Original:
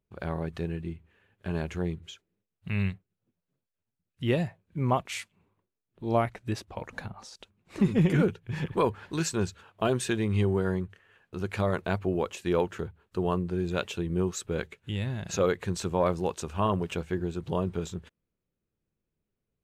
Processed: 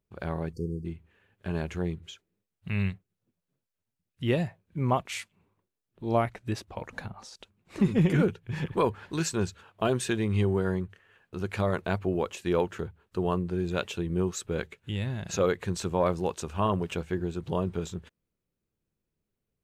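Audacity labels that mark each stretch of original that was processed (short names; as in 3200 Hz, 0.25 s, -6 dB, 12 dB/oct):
0.530000	0.850000	spectral delete 500–4500 Hz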